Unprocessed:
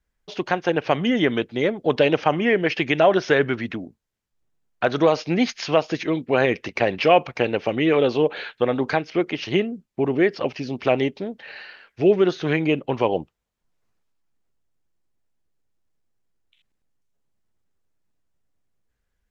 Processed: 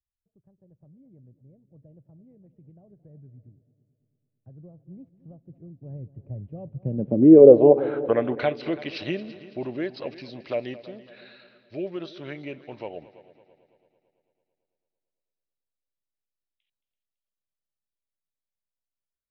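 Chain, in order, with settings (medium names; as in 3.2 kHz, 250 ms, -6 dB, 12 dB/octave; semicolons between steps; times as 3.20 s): Doppler pass-by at 7.24 s, 26 m/s, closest 13 m; dynamic bell 1.4 kHz, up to -5 dB, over -41 dBFS, Q 0.84; small resonant body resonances 590/3900 Hz, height 9 dB, ringing for 30 ms; low-pass sweep 110 Hz -> 4.5 kHz, 6.69–8.68 s; multi-head delay 111 ms, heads second and third, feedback 48%, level -18 dB; trim +2.5 dB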